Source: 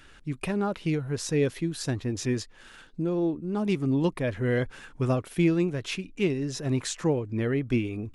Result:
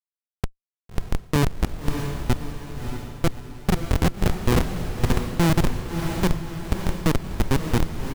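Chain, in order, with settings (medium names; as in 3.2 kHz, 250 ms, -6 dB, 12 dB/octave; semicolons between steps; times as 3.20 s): chunks repeated in reverse 308 ms, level -11.5 dB; de-hum 287.4 Hz, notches 19; in parallel at +2.5 dB: peak limiter -22 dBFS, peak gain reduction 9 dB; on the sum: delay 312 ms -21.5 dB; Schmitt trigger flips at -14 dBFS; echo that smears into a reverb 618 ms, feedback 48%, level -6 dB; trim +5.5 dB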